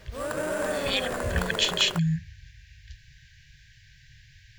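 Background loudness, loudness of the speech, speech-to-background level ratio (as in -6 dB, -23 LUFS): -31.0 LUFS, -26.5 LUFS, 4.5 dB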